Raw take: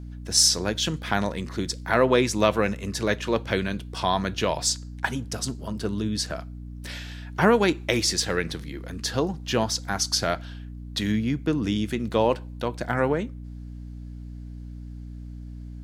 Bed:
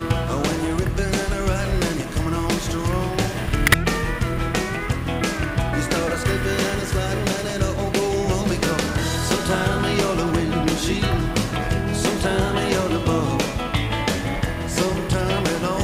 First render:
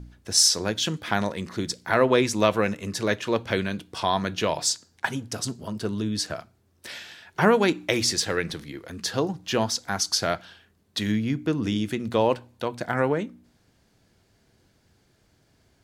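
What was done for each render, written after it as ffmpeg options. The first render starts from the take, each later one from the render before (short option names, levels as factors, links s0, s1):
-af "bandreject=f=60:t=h:w=4,bandreject=f=120:t=h:w=4,bandreject=f=180:t=h:w=4,bandreject=f=240:t=h:w=4,bandreject=f=300:t=h:w=4"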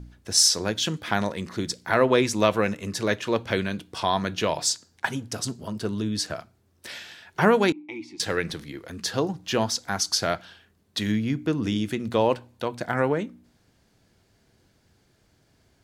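-filter_complex "[0:a]asettb=1/sr,asplit=3[s0][s1][s2];[s0]atrim=end=7.724[s3];[s1]atrim=start=7.72:end=8.2,asetpts=PTS-STARTPTS,afade=t=in:d=0.004:c=qsin,afade=t=out:st=0.476:d=0.004:c=qsin,asplit=3[s4][s5][s6];[s4]bandpass=f=300:t=q:w=8,volume=1[s7];[s5]bandpass=f=870:t=q:w=8,volume=0.501[s8];[s6]bandpass=f=2240:t=q:w=8,volume=0.355[s9];[s7][s8][s9]amix=inputs=3:normalize=0[s10];[s2]atrim=start=8.196[s11];[s3][s10]acrossfade=d=0.004:c1=hsin:c2=qsin[s12];[s12][s11]acrossfade=d=0.004:c1=qsin:c2=hsin"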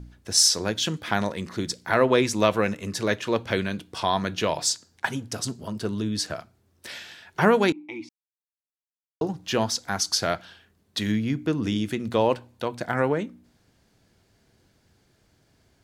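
-filter_complex "[0:a]asplit=3[s0][s1][s2];[s0]atrim=end=8.09,asetpts=PTS-STARTPTS,afade=t=out:st=8.086:d=0.004:c=hsin[s3];[s1]atrim=start=8.09:end=9.21,asetpts=PTS-STARTPTS,volume=0[s4];[s2]atrim=start=9.21,asetpts=PTS-STARTPTS,afade=t=in:d=0.004:c=hsin[s5];[s3][s4][s5]concat=n=3:v=0:a=1"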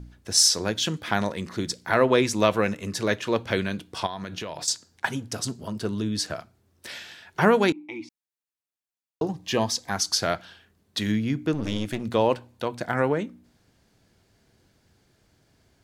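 -filter_complex "[0:a]asettb=1/sr,asplit=3[s0][s1][s2];[s0]atrim=end=4.064[s3];[s1]atrim=start=4.06:end=4.68,asetpts=PTS-STARTPTS,afade=t=in:d=0.004:c=qsin,afade=t=out:st=0.616:d=0.004:c=qsin,acompressor=threshold=0.0355:ratio=10:attack=3.2:release=140:knee=1:detection=peak[s4];[s2]atrim=start=4.676[s5];[s3][s4]acrossfade=d=0.004:c1=hsin:c2=qsin[s6];[s6][s5]acrossfade=d=0.004:c1=qsin:c2=hsin,asettb=1/sr,asplit=3[s7][s8][s9];[s7]atrim=end=9.304[s10];[s8]atrim=start=9.3:end=9.91,asetpts=PTS-STARTPTS,afade=t=in:d=0.004:c=qsin,afade=t=out:st=0.606:d=0.004:c=qsin,asuperstop=centerf=1400:order=20:qfactor=6.3[s11];[s9]atrim=start=9.906[s12];[s10][s11]acrossfade=d=0.004:c1=hsin:c2=qsin[s13];[s13][s12]acrossfade=d=0.004:c1=qsin:c2=hsin,asettb=1/sr,asplit=3[s14][s15][s16];[s14]atrim=end=11.534[s17];[s15]atrim=start=11.53:end=12.04,asetpts=PTS-STARTPTS,afade=t=in:d=0.004:c=qsin,afade=t=out:st=0.506:d=0.004:c=qsin,aeval=exprs='clip(val(0),-1,0.02)':c=same[s18];[s16]atrim=start=12.036[s19];[s17][s18]acrossfade=d=0.004:c1=hsin:c2=qsin[s20];[s20][s19]acrossfade=d=0.004:c1=qsin:c2=hsin"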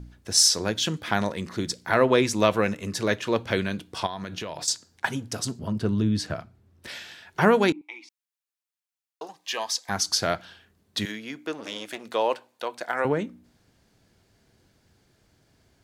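-filter_complex "[0:a]asettb=1/sr,asplit=3[s0][s1][s2];[s0]atrim=end=5.594[s3];[s1]atrim=start=5.59:end=6.88,asetpts=PTS-STARTPTS,afade=t=in:d=0.004:c=qsin,afade=t=out:st=1.286:d=0.004:c=qsin,bass=f=250:g=7,treble=f=4000:g=-7[s4];[s2]atrim=start=6.876[s5];[s3][s4]acrossfade=d=0.004:c1=hsin:c2=qsin[s6];[s6][s5]acrossfade=d=0.004:c1=qsin:c2=hsin,asettb=1/sr,asplit=3[s7][s8][s9];[s7]atrim=end=7.814[s10];[s8]atrim=start=7.81:end=9.89,asetpts=PTS-STARTPTS,afade=t=in:d=0.004:c=qsin,afade=t=out:st=2.076:d=0.004:c=qsin,highpass=870[s11];[s9]atrim=start=9.886[s12];[s10][s11]acrossfade=d=0.004:c1=hsin:c2=qsin[s13];[s13][s12]acrossfade=d=0.004:c1=qsin:c2=hsin,asettb=1/sr,asplit=3[s14][s15][s16];[s14]atrim=end=11.054[s17];[s15]atrim=start=11.05:end=13.05,asetpts=PTS-STARTPTS,afade=t=in:d=0.004:c=qsin,afade=t=out:st=1.996:d=0.004:c=qsin,highpass=510[s18];[s16]atrim=start=13.046[s19];[s17][s18]acrossfade=d=0.004:c1=hsin:c2=qsin[s20];[s20][s19]acrossfade=d=0.004:c1=qsin:c2=hsin"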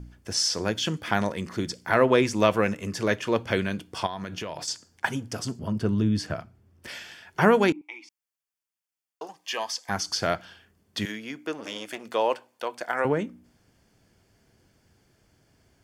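-filter_complex "[0:a]acrossover=split=5100[s0][s1];[s1]acompressor=threshold=0.0158:ratio=4:attack=1:release=60[s2];[s0][s2]amix=inputs=2:normalize=0,bandreject=f=3900:w=6.2"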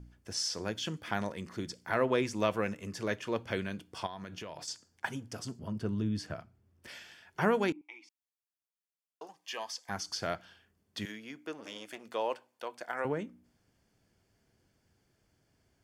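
-af "volume=0.355"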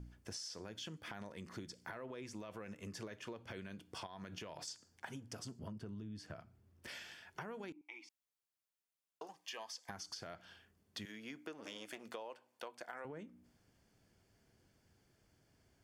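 -af "alimiter=level_in=1.12:limit=0.0631:level=0:latency=1:release=48,volume=0.891,acompressor=threshold=0.00631:ratio=10"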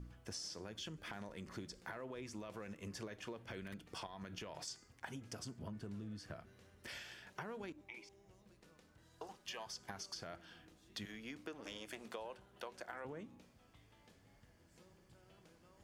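-filter_complex "[1:a]volume=0.00596[s0];[0:a][s0]amix=inputs=2:normalize=0"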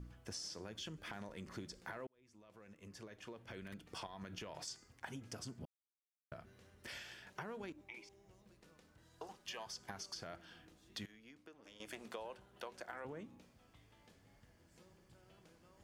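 -filter_complex "[0:a]asettb=1/sr,asplit=3[s0][s1][s2];[s0]atrim=end=5.654[s3];[s1]atrim=start=5.65:end=6.32,asetpts=PTS-STARTPTS,afade=t=in:d=0.004:c=qsin,afade=t=out:st=0.666:d=0.004:c=qsin,acrusher=bits=2:mix=0:aa=0.5[s4];[s2]atrim=start=6.316[s5];[s3][s4]acrossfade=d=0.004:c1=hsin:c2=qsin[s6];[s6][s5]acrossfade=d=0.004:c1=qsin:c2=hsin,asplit=4[s7][s8][s9][s10];[s7]atrim=end=2.07,asetpts=PTS-STARTPTS,afade=t=out:st=2.066:d=0.004:c=hsin[s11];[s8]atrim=start=2.07:end=11.062,asetpts=PTS-STARTPTS,afade=t=in:d=1.93[s12];[s9]atrim=start=11.058:end=11.802,asetpts=PTS-STARTPTS,volume=0.282[s13];[s10]atrim=start=11.798[s14];[s11][s12]concat=n=2:v=0:a=1[s15];[s15][s13]acrossfade=d=0.004:c1=hsin:c2=hsin[s16];[s16][s14]acrossfade=d=0.004:c1=hsin:c2=hsin"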